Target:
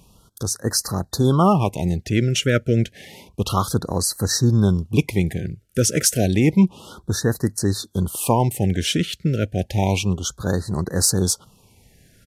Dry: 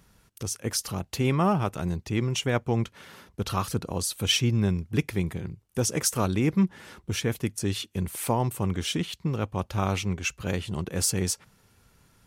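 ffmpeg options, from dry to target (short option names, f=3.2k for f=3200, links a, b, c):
-af "aresample=32000,aresample=44100,afftfilt=real='re*(1-between(b*sr/1024,900*pow(2800/900,0.5+0.5*sin(2*PI*0.3*pts/sr))/1.41,900*pow(2800/900,0.5+0.5*sin(2*PI*0.3*pts/sr))*1.41))':imag='im*(1-between(b*sr/1024,900*pow(2800/900,0.5+0.5*sin(2*PI*0.3*pts/sr))/1.41,900*pow(2800/900,0.5+0.5*sin(2*PI*0.3*pts/sr))*1.41))':win_size=1024:overlap=0.75,volume=7.5dB"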